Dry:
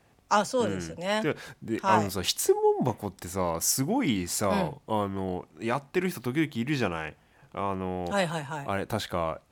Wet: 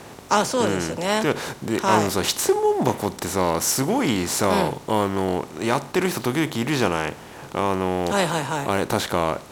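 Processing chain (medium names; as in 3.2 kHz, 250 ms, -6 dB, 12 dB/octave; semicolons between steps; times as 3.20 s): spectral levelling over time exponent 0.6; trim +2 dB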